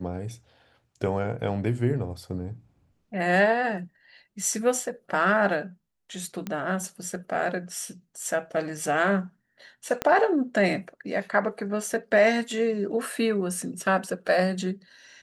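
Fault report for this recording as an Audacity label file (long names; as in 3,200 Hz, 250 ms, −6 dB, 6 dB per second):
6.470000	6.470000	click −18 dBFS
10.020000	10.020000	click −11 dBFS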